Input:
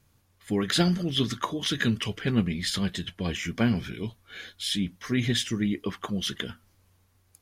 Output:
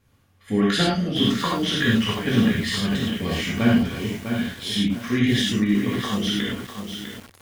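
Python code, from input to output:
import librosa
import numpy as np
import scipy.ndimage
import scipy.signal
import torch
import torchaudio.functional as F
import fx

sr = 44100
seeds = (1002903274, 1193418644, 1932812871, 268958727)

y = fx.bass_treble(x, sr, bass_db=-1, treble_db=-7)
y = fx.rev_gated(y, sr, seeds[0], gate_ms=130, shape='flat', drr_db=-5.0)
y = fx.echo_crushed(y, sr, ms=651, feedback_pct=35, bits=6, wet_db=-7.0)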